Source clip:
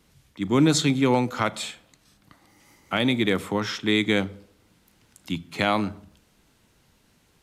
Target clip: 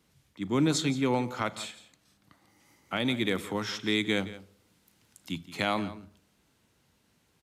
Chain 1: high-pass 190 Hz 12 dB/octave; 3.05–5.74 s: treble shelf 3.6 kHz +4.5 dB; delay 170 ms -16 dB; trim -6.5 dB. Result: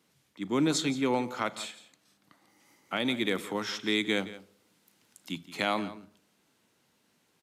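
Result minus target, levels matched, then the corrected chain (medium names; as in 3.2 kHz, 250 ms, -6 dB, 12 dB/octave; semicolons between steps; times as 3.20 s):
125 Hz band -5.5 dB
high-pass 60 Hz 12 dB/octave; 3.05–5.74 s: treble shelf 3.6 kHz +4.5 dB; delay 170 ms -16 dB; trim -6.5 dB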